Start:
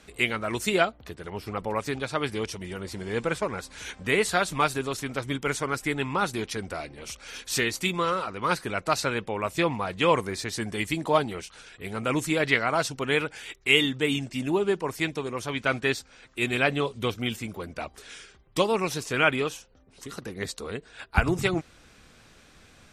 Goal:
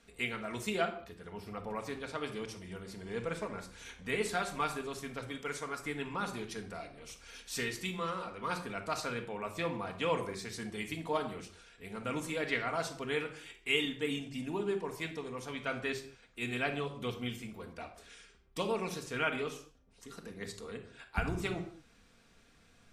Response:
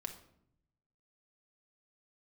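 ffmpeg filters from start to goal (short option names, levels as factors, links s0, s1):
-filter_complex "[0:a]asettb=1/sr,asplit=3[s0][s1][s2];[s0]atrim=end=5.274[s3];[s1]atrim=start=5.27:end=5.78,asetpts=PTS-STARTPTS,afade=t=in:d=0.004:c=qsin,afade=t=out:st=0.506:d=0.004:c=qsin,lowshelf=f=200:g=-9[s4];[s2]atrim=start=5.776[s5];[s3][s4]acrossfade=d=0.004:c1=hsin:c2=qsin[s6];[s6][s5]acrossfade=d=0.004:c1=qsin:c2=hsin[s7];[1:a]atrim=start_sample=2205,afade=t=out:st=0.28:d=0.01,atrim=end_sample=12789[s8];[s7][s8]afir=irnorm=-1:irlink=0,volume=0.398"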